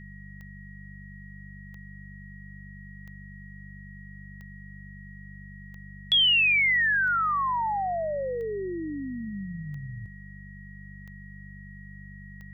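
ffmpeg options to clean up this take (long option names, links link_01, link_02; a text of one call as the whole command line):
ffmpeg -i in.wav -af "adeclick=threshold=4,bandreject=frequency=49.1:width_type=h:width=4,bandreject=frequency=98.2:width_type=h:width=4,bandreject=frequency=147.3:width_type=h:width=4,bandreject=frequency=196.4:width_type=h:width=4,bandreject=frequency=1900:width=30,agate=range=-21dB:threshold=-36dB" out.wav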